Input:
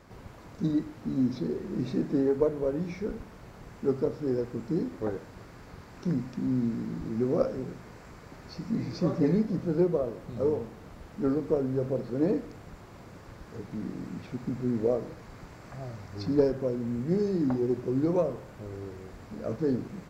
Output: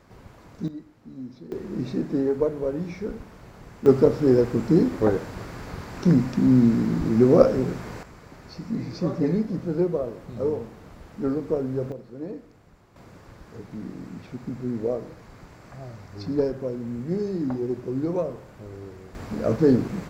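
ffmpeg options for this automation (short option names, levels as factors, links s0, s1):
-af "asetnsamples=n=441:p=0,asendcmd='0.68 volume volume -11dB;1.52 volume volume 2dB;3.86 volume volume 11dB;8.03 volume volume 1.5dB;11.92 volume volume -8.5dB;12.96 volume volume 0dB;19.15 volume volume 10dB',volume=0.944"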